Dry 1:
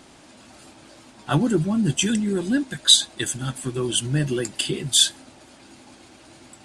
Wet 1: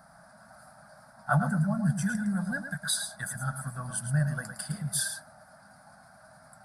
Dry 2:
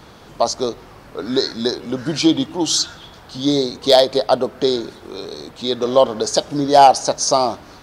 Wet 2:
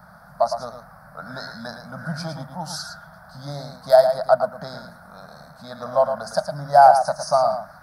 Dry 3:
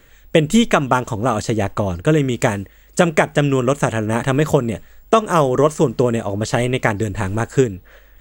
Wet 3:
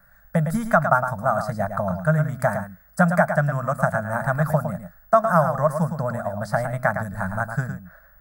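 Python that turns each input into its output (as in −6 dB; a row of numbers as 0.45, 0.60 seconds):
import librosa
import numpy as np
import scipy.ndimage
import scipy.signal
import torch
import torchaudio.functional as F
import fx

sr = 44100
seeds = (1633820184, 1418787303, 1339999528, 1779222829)

p1 = fx.curve_eq(x, sr, hz=(110.0, 180.0, 370.0, 640.0, 1000.0, 1500.0, 2900.0, 4900.0, 7000.0, 10000.0), db=(0, 10, -30, 10, 3, 12, -25, -1, -13, 7))
p2 = p1 + fx.echo_single(p1, sr, ms=110, db=-8.0, dry=0)
y = p2 * 10.0 ** (-9.0 / 20.0)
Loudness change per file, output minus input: −9.5, −2.0, −4.5 LU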